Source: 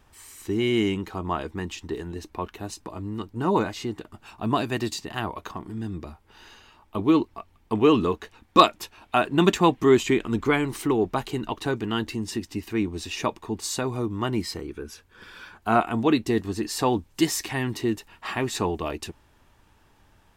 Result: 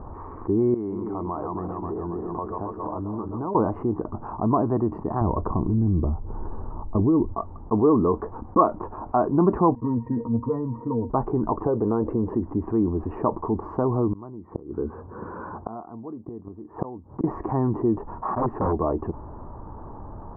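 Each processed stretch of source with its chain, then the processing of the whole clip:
0.74–3.55 s: backward echo that repeats 134 ms, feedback 74%, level -9 dB + bass shelf 480 Hz -7.5 dB + compression 4:1, threshold -39 dBFS
5.21–7.33 s: tilt EQ -3.5 dB/octave + compression 2.5:1, threshold -21 dBFS
9.75–11.10 s: pitch-class resonator A#, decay 0.12 s + loudspeaker Doppler distortion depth 0.12 ms
11.66–12.35 s: peaking EQ 500 Hz +12 dB 0.55 oct + compression, threshold -23 dBFS
14.12–17.24 s: high-pass 83 Hz + distance through air 470 m + inverted gate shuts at -25 dBFS, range -33 dB
18.35–18.76 s: expander -29 dBFS + integer overflow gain 20.5 dB
whole clip: elliptic low-pass 1.1 kHz, stop band 70 dB; level flattener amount 50%; trim -2.5 dB

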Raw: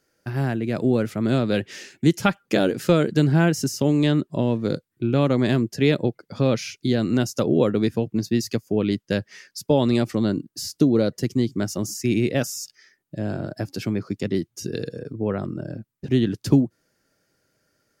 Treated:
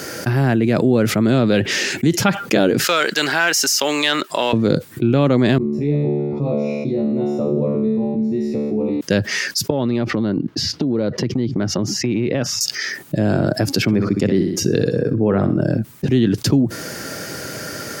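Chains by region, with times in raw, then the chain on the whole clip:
2.84–4.53 s: high-pass 1.2 kHz + waveshaping leveller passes 1
5.58–9.01 s: boxcar filter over 28 samples + feedback comb 73 Hz, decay 0.83 s, mix 100%
9.70–12.61 s: distance through air 260 m + compression 4:1, threshold -34 dBFS
13.82–15.61 s: treble shelf 3.1 kHz -9 dB + flutter echo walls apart 10.6 m, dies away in 0.33 s
whole clip: high-pass 89 Hz; dynamic bell 9.9 kHz, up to -6 dB, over -50 dBFS, Q 0.94; level flattener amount 70%

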